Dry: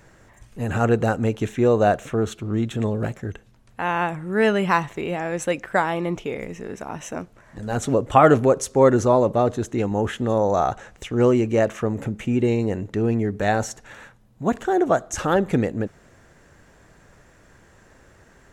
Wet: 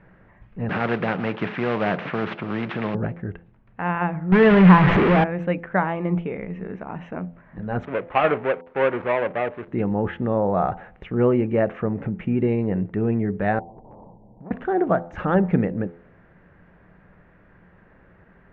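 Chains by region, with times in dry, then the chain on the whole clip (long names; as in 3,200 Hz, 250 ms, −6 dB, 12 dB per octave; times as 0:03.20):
0:00.69–0:02.95: variable-slope delta modulation 32 kbit/s + high-pass filter 140 Hz 24 dB per octave + every bin compressed towards the loudest bin 2 to 1
0:04.32–0:05.24: linear delta modulator 64 kbit/s, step −17 dBFS + leveller curve on the samples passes 2
0:07.85–0:09.68: gap after every zero crossing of 0.27 ms + three-way crossover with the lows and the highs turned down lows −14 dB, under 430 Hz, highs −15 dB, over 3,600 Hz
0:13.59–0:14.51: Butterworth low-pass 930 Hz 96 dB per octave + downward compressor 3 to 1, threshold −43 dBFS + every bin compressed towards the loudest bin 2 to 1
whole clip: low-pass filter 2,400 Hz 24 dB per octave; parametric band 180 Hz +12 dB 0.24 octaves; hum removal 85.17 Hz, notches 11; level −1.5 dB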